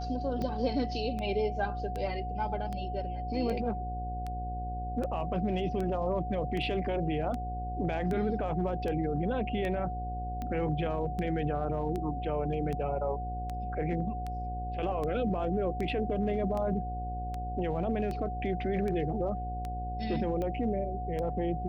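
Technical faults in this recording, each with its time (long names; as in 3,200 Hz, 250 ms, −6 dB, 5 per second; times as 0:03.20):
mains buzz 60 Hz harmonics 14 −37 dBFS
scratch tick 78 rpm −24 dBFS
whistle 730 Hz −37 dBFS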